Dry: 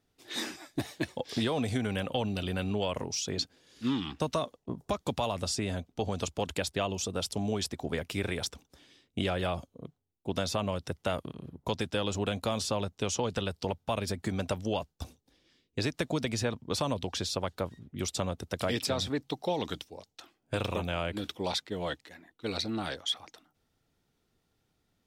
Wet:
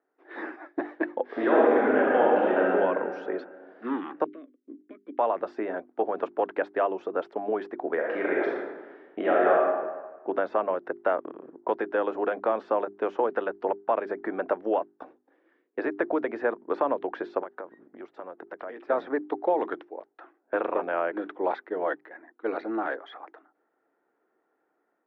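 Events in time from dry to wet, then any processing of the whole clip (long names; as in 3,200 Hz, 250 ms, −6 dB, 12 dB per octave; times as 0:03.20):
0:01.26–0:02.66: thrown reverb, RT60 2.2 s, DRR −6 dB
0:04.24–0:05.19: formant filter i
0:07.96–0:09.56: thrown reverb, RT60 1.3 s, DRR −3.5 dB
0:17.43–0:18.90: downward compressor 16 to 1, threshold −38 dBFS
whole clip: Chebyshev band-pass filter 320–1,700 Hz, order 3; mains-hum notches 50/100/150/200/250/300/350/400 Hz; automatic gain control gain up to 4.5 dB; level +3.5 dB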